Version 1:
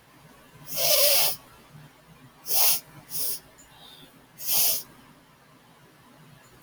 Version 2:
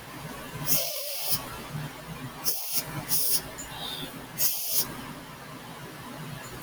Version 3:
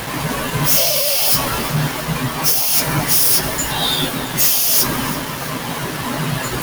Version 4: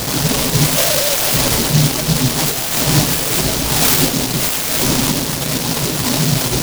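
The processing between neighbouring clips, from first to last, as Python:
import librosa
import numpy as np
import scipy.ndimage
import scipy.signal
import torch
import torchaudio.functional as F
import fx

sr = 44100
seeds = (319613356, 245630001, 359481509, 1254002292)

y1 = fx.over_compress(x, sr, threshold_db=-33.0, ratio=-1.0)
y1 = y1 * librosa.db_to_amplitude(5.0)
y2 = fx.leveller(y1, sr, passes=5)
y2 = fx.echo_feedback(y2, sr, ms=335, feedback_pct=59, wet_db=-16.0)
y3 = np.repeat(scipy.signal.resample_poly(y2, 1, 4), 4)[:len(y2)]
y3 = fx.noise_mod_delay(y3, sr, seeds[0], noise_hz=4600.0, depth_ms=0.24)
y3 = y3 * librosa.db_to_amplitude(6.0)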